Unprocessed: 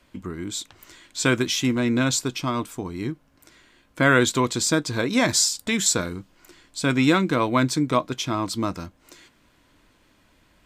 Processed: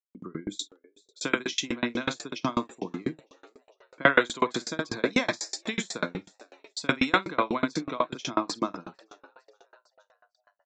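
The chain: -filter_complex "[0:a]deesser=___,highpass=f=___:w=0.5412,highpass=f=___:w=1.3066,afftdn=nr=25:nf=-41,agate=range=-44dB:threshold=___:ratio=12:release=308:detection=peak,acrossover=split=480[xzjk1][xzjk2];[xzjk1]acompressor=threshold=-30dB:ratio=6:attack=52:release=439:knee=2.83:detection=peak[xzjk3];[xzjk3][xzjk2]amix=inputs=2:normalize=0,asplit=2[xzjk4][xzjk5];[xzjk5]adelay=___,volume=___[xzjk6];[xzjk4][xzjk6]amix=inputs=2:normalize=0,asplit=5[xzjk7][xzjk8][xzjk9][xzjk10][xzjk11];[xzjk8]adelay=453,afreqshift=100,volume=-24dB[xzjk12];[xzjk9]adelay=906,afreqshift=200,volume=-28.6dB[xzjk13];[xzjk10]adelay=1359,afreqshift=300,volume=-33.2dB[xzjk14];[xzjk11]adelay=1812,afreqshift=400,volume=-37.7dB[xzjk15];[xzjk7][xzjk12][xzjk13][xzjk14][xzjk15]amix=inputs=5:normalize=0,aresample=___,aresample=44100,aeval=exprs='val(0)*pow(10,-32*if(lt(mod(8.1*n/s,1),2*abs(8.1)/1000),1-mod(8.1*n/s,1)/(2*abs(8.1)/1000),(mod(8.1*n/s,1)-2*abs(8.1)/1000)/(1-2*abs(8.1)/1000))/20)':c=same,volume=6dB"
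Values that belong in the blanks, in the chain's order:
0.55, 160, 160, -46dB, 50, -8dB, 16000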